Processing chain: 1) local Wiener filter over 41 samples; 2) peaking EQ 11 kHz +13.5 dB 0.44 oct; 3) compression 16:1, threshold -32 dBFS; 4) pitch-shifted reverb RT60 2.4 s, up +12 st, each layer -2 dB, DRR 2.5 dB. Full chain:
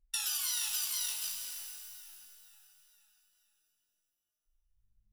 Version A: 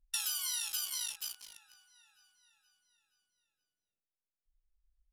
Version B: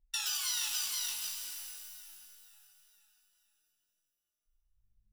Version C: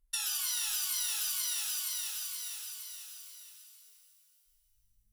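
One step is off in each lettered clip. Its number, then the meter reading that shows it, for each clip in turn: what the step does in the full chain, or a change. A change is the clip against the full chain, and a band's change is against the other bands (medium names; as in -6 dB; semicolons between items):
4, momentary loudness spread change -4 LU; 2, 8 kHz band -2.5 dB; 1, crest factor change -3.5 dB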